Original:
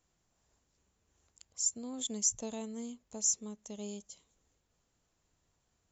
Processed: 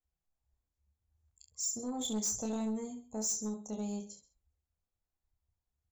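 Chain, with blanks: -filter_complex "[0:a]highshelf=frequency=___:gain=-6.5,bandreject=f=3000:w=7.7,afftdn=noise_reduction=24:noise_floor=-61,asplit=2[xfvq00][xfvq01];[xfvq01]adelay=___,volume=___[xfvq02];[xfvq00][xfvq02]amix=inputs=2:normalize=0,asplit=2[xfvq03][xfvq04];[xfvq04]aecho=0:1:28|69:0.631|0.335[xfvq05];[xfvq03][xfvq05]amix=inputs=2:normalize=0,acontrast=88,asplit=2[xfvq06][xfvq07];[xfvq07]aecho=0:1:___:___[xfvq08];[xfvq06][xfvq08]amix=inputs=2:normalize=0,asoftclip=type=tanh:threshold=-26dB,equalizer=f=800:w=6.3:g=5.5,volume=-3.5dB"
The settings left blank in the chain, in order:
4200, 14, -14dB, 132, 0.112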